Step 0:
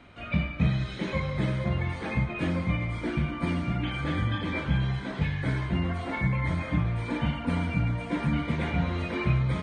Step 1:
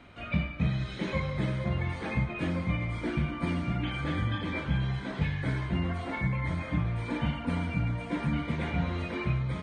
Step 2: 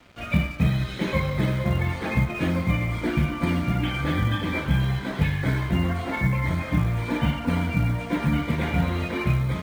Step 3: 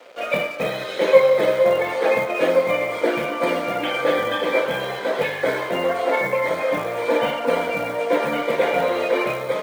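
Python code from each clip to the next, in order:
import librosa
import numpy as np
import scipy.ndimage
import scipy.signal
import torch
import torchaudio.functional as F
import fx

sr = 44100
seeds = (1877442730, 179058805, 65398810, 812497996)

y1 = fx.rider(x, sr, range_db=10, speed_s=0.5)
y1 = y1 * librosa.db_to_amplitude(-2.5)
y2 = fx.quant_float(y1, sr, bits=4)
y2 = np.sign(y2) * np.maximum(np.abs(y2) - 10.0 ** (-53.5 / 20.0), 0.0)
y2 = y2 * librosa.db_to_amplitude(7.0)
y3 = fx.highpass_res(y2, sr, hz=510.0, q=5.2)
y3 = y3 * librosa.db_to_amplitude(5.0)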